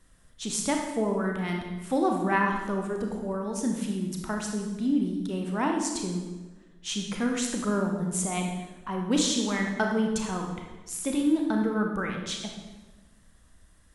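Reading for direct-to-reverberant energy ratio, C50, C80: 1.5 dB, 3.0 dB, 5.5 dB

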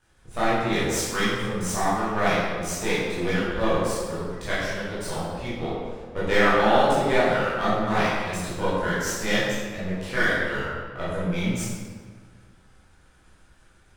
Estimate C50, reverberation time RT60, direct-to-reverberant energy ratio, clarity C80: -2.5 dB, 1.7 s, -11.5 dB, 0.5 dB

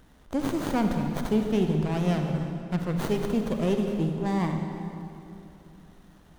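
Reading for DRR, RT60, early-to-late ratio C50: 3.5 dB, 2.9 s, 4.0 dB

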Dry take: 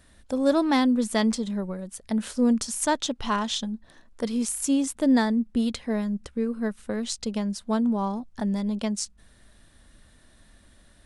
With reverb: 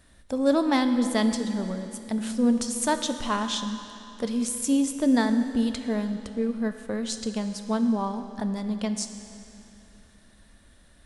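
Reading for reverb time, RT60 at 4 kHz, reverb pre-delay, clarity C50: 3.0 s, 2.7 s, 8 ms, 8.0 dB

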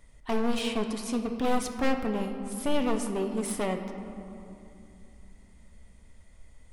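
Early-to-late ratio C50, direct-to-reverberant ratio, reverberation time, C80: 7.0 dB, 5.5 dB, 2.8 s, 8.0 dB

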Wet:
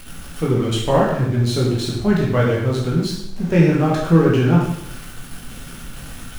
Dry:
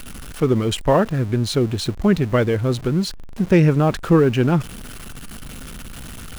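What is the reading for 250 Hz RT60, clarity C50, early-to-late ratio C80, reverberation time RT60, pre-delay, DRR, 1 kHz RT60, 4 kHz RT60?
0.75 s, 2.0 dB, 5.5 dB, 0.80 s, 6 ms, -4.5 dB, 0.75 s, 0.70 s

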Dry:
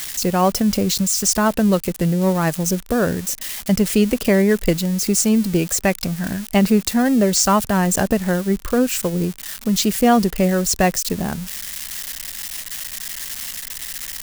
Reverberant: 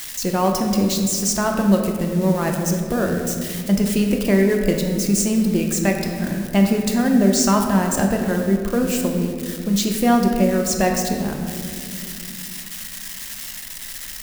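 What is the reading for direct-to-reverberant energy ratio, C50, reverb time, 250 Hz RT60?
2.0 dB, 4.0 dB, 2.4 s, 4.0 s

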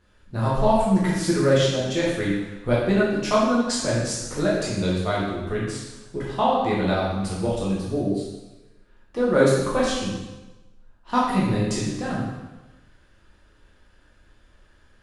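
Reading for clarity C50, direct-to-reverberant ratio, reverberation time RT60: 0.0 dB, -7.0 dB, 1.1 s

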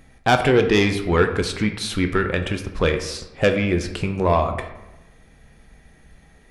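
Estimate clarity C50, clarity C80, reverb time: 9.0 dB, 11.5 dB, 0.95 s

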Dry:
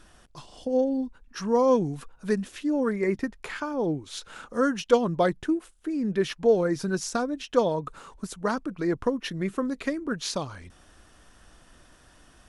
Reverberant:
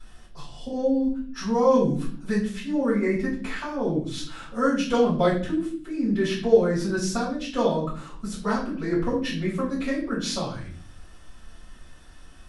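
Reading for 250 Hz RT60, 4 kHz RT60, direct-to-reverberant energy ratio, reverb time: 0.85 s, 0.45 s, -11.0 dB, 0.50 s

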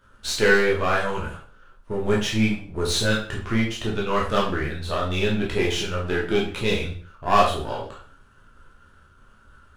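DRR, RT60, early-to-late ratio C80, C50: -4.0 dB, 0.45 s, 10.0 dB, 5.0 dB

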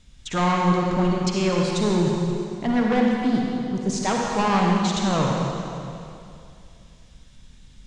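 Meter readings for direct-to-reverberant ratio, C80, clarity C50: -1.5 dB, 0.0 dB, -1.0 dB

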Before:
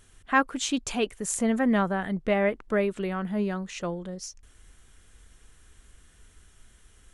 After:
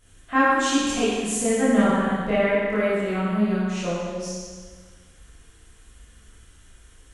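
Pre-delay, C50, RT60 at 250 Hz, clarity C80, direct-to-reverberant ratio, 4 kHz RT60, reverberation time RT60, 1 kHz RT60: 13 ms, -3.5 dB, 1.6 s, -1.0 dB, -10.5 dB, 1.5 s, 1.6 s, 1.6 s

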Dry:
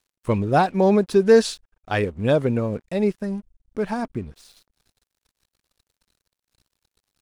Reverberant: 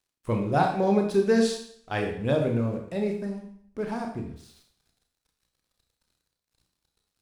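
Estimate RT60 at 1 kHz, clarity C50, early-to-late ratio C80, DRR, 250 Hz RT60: 0.60 s, 6.5 dB, 9.0 dB, 2.0 dB, 0.60 s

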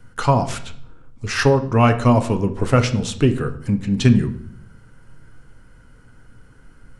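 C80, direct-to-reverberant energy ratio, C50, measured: 17.0 dB, 7.0 dB, 13.5 dB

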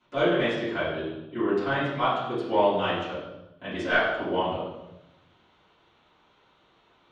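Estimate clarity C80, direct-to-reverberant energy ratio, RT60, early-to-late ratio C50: 4.0 dB, -15.5 dB, 0.90 s, 1.0 dB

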